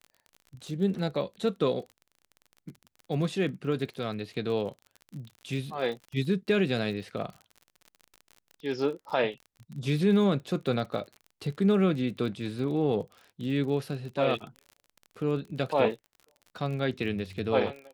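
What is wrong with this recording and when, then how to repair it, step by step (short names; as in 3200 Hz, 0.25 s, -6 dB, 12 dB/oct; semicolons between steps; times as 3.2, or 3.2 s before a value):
crackle 36/s -38 dBFS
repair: de-click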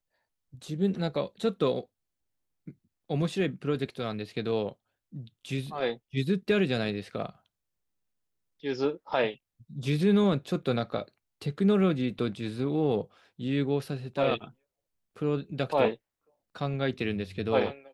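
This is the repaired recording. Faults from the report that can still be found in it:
none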